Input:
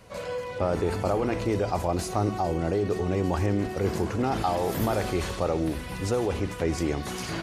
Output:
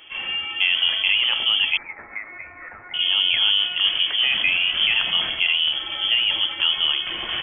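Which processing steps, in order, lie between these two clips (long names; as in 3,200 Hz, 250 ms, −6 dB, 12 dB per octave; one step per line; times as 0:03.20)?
0:01.77–0:02.94: Butterworth high-pass 1,100 Hz 48 dB per octave
voice inversion scrambler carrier 3,300 Hz
level +5.5 dB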